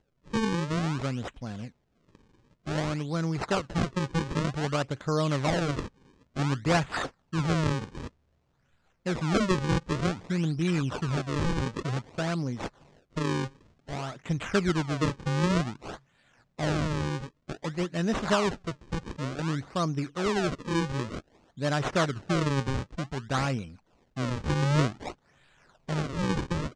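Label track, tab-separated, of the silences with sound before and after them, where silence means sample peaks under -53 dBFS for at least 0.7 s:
8.090000	9.060000	silence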